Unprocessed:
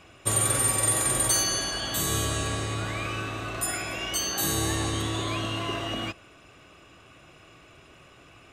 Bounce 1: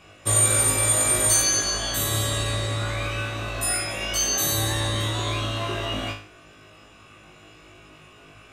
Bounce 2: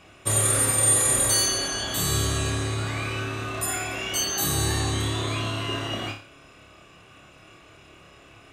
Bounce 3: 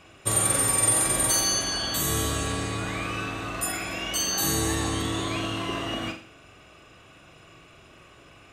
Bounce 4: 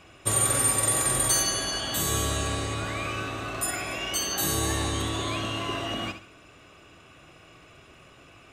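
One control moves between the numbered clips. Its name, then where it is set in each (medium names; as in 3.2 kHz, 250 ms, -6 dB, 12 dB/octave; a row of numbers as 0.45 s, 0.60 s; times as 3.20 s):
flutter echo, walls apart: 3.3 m, 4.9 m, 7.4 m, 11.7 m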